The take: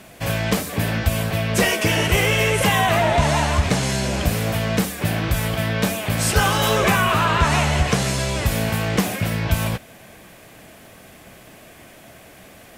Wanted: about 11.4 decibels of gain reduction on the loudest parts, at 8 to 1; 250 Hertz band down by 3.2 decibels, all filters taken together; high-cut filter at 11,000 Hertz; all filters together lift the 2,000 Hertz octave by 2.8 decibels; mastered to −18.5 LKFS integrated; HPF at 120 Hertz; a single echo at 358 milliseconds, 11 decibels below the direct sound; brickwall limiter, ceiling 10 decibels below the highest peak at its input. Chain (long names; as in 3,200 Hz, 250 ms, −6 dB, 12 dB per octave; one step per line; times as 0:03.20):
high-pass filter 120 Hz
low-pass filter 11,000 Hz
parametric band 250 Hz −4 dB
parametric band 2,000 Hz +3.5 dB
downward compressor 8 to 1, threshold −26 dBFS
brickwall limiter −23.5 dBFS
single-tap delay 358 ms −11 dB
level +13 dB